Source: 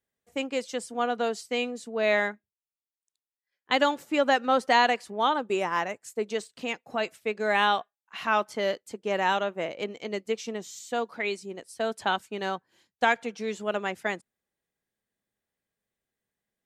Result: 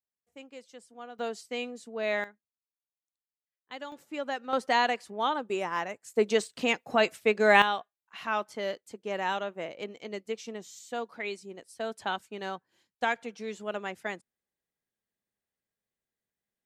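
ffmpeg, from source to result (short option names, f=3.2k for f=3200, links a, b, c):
-af "asetnsamples=n=441:p=0,asendcmd='1.19 volume volume -6dB;2.24 volume volume -18dB;3.92 volume volume -11dB;4.53 volume volume -4dB;6.14 volume volume 5dB;7.62 volume volume -5.5dB',volume=-17dB"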